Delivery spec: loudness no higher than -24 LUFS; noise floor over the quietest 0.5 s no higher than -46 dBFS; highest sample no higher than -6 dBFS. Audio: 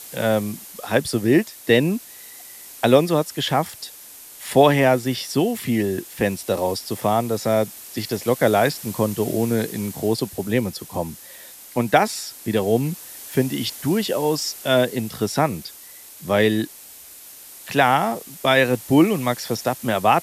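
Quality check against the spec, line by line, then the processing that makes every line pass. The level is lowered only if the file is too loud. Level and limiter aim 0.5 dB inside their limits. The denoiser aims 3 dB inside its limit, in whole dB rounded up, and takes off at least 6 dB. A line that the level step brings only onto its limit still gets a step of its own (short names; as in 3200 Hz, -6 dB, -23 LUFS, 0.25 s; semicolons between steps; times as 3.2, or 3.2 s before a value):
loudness -21.0 LUFS: fail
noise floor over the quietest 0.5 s -43 dBFS: fail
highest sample -2.0 dBFS: fail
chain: gain -3.5 dB; limiter -6.5 dBFS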